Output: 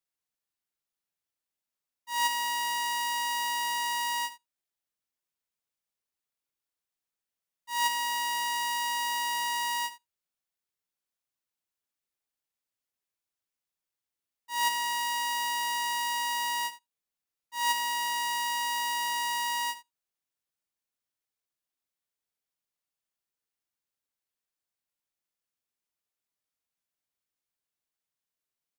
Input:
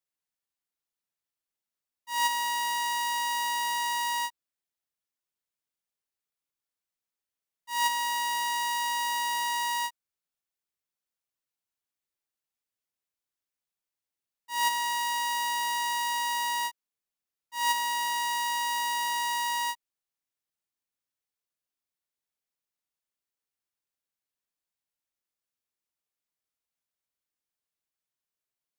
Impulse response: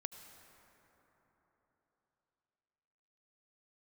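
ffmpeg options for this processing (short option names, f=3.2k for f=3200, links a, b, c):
-filter_complex "[0:a]aecho=1:1:77:0.178,asplit=2[a][b];[1:a]atrim=start_sample=2205,afade=t=out:st=0.13:d=0.01,atrim=end_sample=6174[c];[b][c]afir=irnorm=-1:irlink=0,volume=-4.5dB[d];[a][d]amix=inputs=2:normalize=0,acrusher=bits=8:mode=log:mix=0:aa=0.000001,volume=-3.5dB"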